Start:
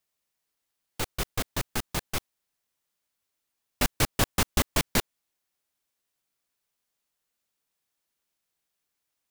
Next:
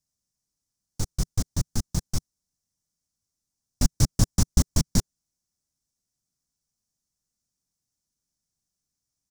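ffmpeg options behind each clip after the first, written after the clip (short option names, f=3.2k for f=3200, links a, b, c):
-af "firequalizer=gain_entry='entry(160,0);entry(400,-15);entry(2700,-25);entry(5600,-3);entry(13000,-17)':delay=0.05:min_phase=1,volume=8.5dB"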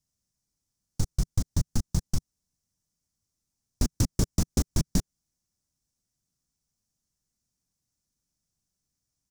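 -af "aeval=exprs='0.178*(abs(mod(val(0)/0.178+3,4)-2)-1)':c=same,lowshelf=f=310:g=5.5,acompressor=threshold=-20dB:ratio=6"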